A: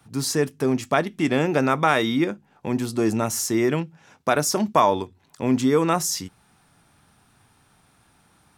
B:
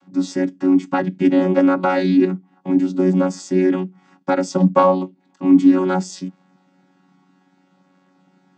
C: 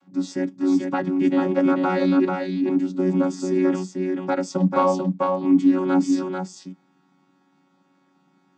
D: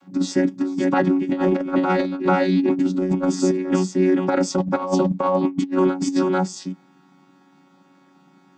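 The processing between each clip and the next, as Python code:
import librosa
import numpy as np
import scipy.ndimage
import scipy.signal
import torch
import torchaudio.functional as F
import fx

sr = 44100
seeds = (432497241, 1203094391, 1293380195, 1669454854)

y1 = fx.chord_vocoder(x, sr, chord='bare fifth', root=54)
y1 = y1 * librosa.db_to_amplitude(6.5)
y2 = y1 + 10.0 ** (-4.0 / 20.0) * np.pad(y1, (int(441 * sr / 1000.0), 0))[:len(y1)]
y2 = y2 * librosa.db_to_amplitude(-5.0)
y3 = fx.over_compress(y2, sr, threshold_db=-23.0, ratio=-0.5)
y3 = y3 * librosa.db_to_amplitude(4.5)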